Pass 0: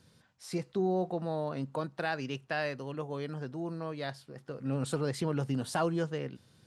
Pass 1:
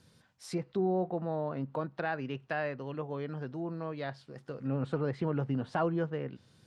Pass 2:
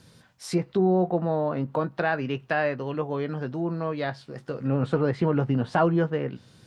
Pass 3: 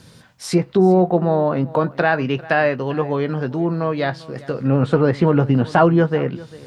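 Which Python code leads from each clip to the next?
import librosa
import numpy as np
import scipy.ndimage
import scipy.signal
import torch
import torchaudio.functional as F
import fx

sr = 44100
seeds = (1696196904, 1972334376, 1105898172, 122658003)

y1 = fx.env_lowpass_down(x, sr, base_hz=2100.0, full_db=-31.5)
y2 = fx.doubler(y1, sr, ms=17.0, db=-12.0)
y2 = y2 * 10.0 ** (8.5 / 20.0)
y3 = y2 + 10.0 ** (-20.0 / 20.0) * np.pad(y2, (int(397 * sr / 1000.0), 0))[:len(y2)]
y3 = y3 * 10.0 ** (8.0 / 20.0)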